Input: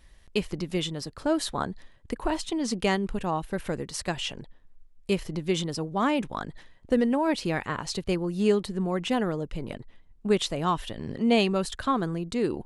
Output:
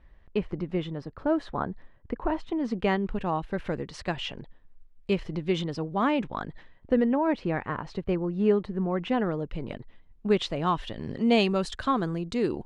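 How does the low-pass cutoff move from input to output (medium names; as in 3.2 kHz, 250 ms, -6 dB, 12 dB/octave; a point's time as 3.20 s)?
2.58 s 1.7 kHz
3.23 s 3.4 kHz
6.36 s 3.4 kHz
7.42 s 1.8 kHz
8.74 s 1.8 kHz
9.74 s 3.9 kHz
10.73 s 3.9 kHz
11.15 s 6.3 kHz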